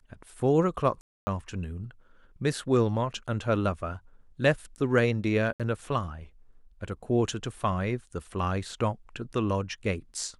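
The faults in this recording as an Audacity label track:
1.010000	1.270000	dropout 260 ms
5.530000	5.600000	dropout 67 ms

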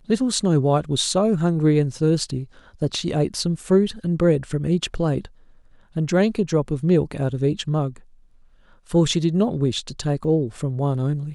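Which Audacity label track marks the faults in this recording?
10.240000	10.240000	dropout 4.7 ms

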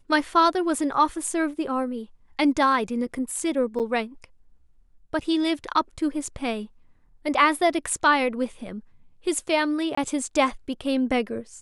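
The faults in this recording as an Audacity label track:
3.790000	3.800000	dropout 8 ms
9.950000	9.970000	dropout 24 ms

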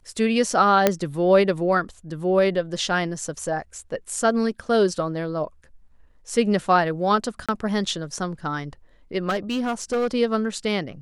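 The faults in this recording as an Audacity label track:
0.870000	0.870000	pop -2 dBFS
7.460000	7.490000	dropout 26 ms
9.290000	10.070000	clipped -19.5 dBFS

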